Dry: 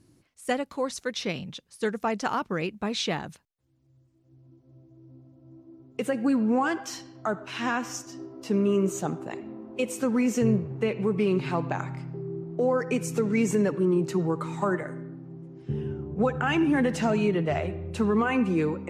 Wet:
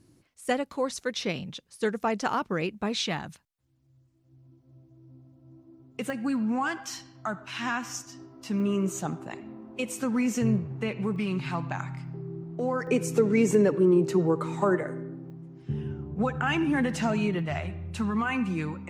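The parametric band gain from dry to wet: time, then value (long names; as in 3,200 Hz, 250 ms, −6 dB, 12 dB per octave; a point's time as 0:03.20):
parametric band 440 Hz 1 octave
+0.5 dB
from 0:03.04 −6.5 dB
from 0:06.10 −13 dB
from 0:08.60 −7 dB
from 0:11.16 −13.5 dB
from 0:12.07 −7 dB
from 0:12.87 +4.5 dB
from 0:15.30 −6.5 dB
from 0:17.39 −14 dB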